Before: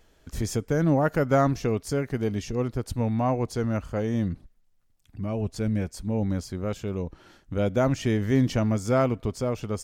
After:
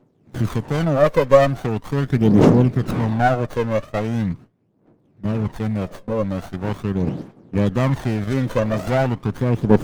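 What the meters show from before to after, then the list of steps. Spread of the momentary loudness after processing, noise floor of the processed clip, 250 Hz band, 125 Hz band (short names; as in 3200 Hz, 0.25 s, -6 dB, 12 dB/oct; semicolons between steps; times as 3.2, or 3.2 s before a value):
12 LU, -60 dBFS, +6.5 dB, +6.5 dB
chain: wind noise 400 Hz -40 dBFS; gate with hold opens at -22 dBFS; HPF 120 Hz 24 dB/oct; in parallel at 0 dB: level quantiser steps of 16 dB; on the sum: soft clip -6.5 dBFS, distortion -27 dB; phaser 0.41 Hz, delay 2 ms, feedback 75%; running maximum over 17 samples; gain +2.5 dB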